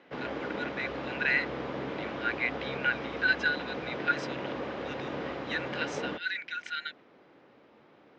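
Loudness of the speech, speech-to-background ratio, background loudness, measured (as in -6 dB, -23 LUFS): -32.5 LUFS, 4.5 dB, -37.0 LUFS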